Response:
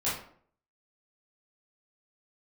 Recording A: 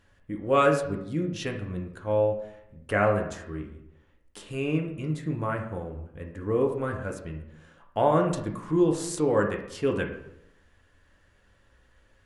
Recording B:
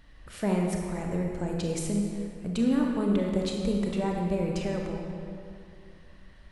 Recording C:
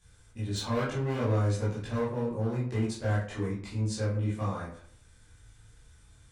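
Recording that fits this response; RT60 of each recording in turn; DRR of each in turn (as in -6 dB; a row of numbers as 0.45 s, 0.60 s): C; 0.80 s, 2.4 s, 0.55 s; 1.5 dB, 0.0 dB, -10.5 dB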